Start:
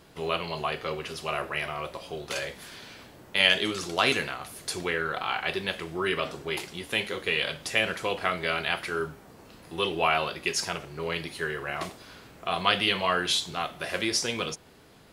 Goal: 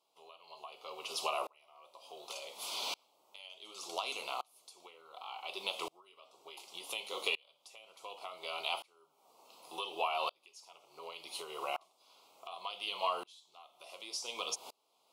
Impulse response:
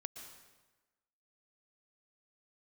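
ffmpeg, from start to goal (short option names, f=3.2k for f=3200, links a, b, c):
-af "highpass=740,equalizer=f=1k:w=1:g=4.5,acompressor=threshold=-40dB:ratio=4,asuperstop=centerf=1700:order=4:qfactor=1.1,aeval=exprs='val(0)*pow(10,-33*if(lt(mod(-0.68*n/s,1),2*abs(-0.68)/1000),1-mod(-0.68*n/s,1)/(2*abs(-0.68)/1000),(mod(-0.68*n/s,1)-2*abs(-0.68)/1000)/(1-2*abs(-0.68)/1000))/20)':c=same,volume=12.5dB"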